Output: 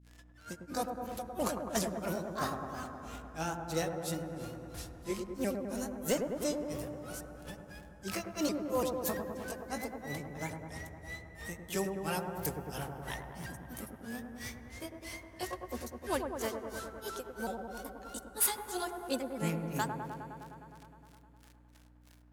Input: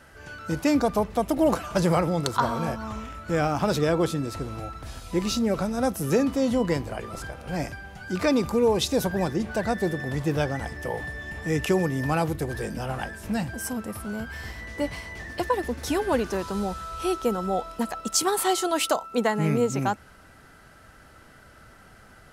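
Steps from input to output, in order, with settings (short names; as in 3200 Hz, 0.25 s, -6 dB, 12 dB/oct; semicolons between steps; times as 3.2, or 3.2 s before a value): repeated pitch sweeps +3 st, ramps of 0.365 s; gate -41 dBFS, range -15 dB; pre-emphasis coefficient 0.8; in parallel at -9 dB: wrapped overs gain 26 dB; on the sum: crackle 150/s -45 dBFS; grains 0.248 s, grains 3/s, pitch spread up and down by 0 st; hum 60 Hz, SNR 19 dB; dark delay 0.103 s, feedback 79%, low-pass 1200 Hz, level -5 dB; on a send at -21 dB: reverb RT60 4.0 s, pre-delay 4 ms; on the sum: gain +3 dB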